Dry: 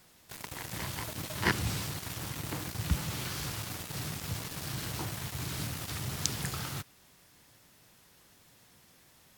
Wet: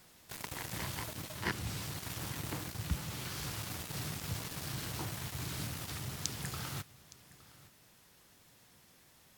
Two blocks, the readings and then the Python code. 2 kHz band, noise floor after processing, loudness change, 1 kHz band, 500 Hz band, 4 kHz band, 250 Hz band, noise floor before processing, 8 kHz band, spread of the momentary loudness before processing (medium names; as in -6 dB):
-5.0 dB, -64 dBFS, -4.0 dB, -4.0 dB, -4.5 dB, -4.0 dB, -4.5 dB, -62 dBFS, -4.0 dB, 7 LU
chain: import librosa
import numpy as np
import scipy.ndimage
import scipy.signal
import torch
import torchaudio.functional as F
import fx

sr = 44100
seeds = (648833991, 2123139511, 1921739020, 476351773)

y = fx.rider(x, sr, range_db=4, speed_s=0.5)
y = y + 10.0 ** (-20.0 / 20.0) * np.pad(y, (int(865 * sr / 1000.0), 0))[:len(y)]
y = F.gain(torch.from_numpy(y), -4.0).numpy()